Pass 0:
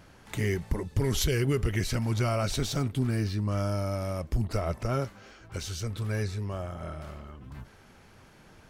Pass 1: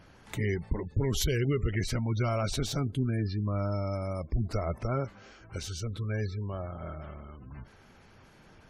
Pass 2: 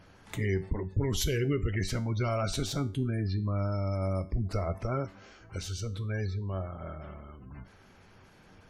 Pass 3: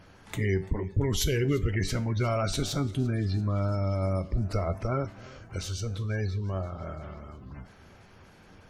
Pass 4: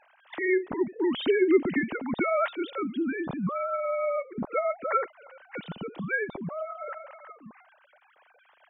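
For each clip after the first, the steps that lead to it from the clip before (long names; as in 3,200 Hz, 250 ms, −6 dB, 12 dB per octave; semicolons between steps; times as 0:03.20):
gate on every frequency bin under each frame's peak −30 dB strong; level −1.5 dB
tuned comb filter 95 Hz, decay 0.36 s, harmonics all, mix 60%; level +5 dB
feedback echo with a swinging delay time 342 ms, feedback 68%, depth 107 cents, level −22 dB; level +2.5 dB
three sine waves on the formant tracks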